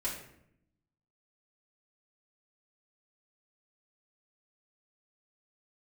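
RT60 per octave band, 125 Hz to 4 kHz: 1.2, 1.1, 0.80, 0.65, 0.65, 0.50 s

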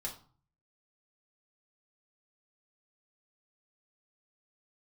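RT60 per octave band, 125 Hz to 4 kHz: 0.80, 0.55, 0.40, 0.45, 0.30, 0.30 s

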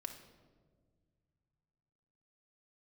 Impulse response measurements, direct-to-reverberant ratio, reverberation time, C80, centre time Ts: 3.5 dB, 1.7 s, 10.5 dB, 20 ms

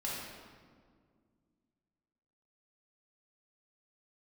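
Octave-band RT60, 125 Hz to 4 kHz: 2.7, 2.9, 2.1, 1.7, 1.4, 1.1 s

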